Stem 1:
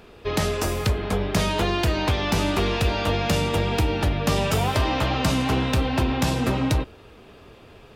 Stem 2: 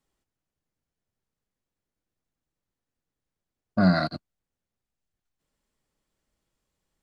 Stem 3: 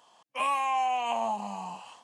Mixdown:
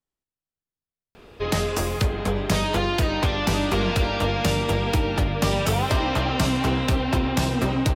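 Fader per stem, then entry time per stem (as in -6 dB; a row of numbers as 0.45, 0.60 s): 0.0, -11.5, -18.0 dB; 1.15, 0.00, 1.30 s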